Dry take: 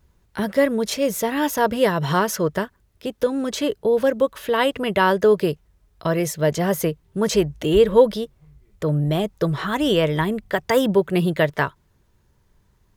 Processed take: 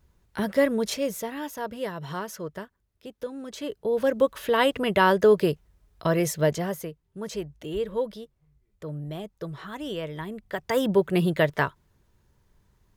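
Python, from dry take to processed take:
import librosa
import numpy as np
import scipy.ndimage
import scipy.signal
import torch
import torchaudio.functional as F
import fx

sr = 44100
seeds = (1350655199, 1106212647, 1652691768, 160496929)

y = fx.gain(x, sr, db=fx.line((0.86, -3.5), (1.48, -13.5), (3.47, -13.5), (4.23, -2.0), (6.43, -2.0), (6.87, -14.0), (10.2, -14.0), (11.0, -3.0)))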